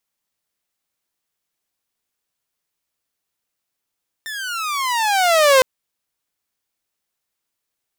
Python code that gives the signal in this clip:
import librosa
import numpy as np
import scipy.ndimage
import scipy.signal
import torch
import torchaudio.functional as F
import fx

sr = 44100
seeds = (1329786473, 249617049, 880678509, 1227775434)

y = fx.riser_tone(sr, length_s=1.36, level_db=-6.0, wave='saw', hz=1810.0, rise_st=-22.0, swell_db=18.0)